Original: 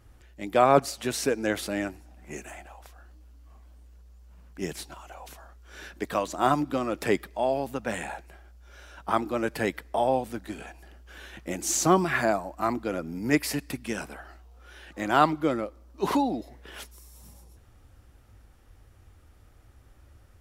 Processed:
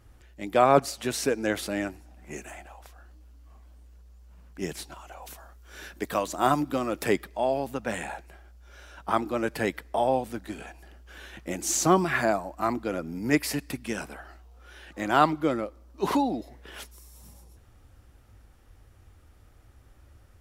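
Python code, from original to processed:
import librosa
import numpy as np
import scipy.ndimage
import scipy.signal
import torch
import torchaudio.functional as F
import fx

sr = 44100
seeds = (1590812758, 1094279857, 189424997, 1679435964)

y = fx.high_shelf(x, sr, hz=10000.0, db=9.0, at=(5.22, 7.13))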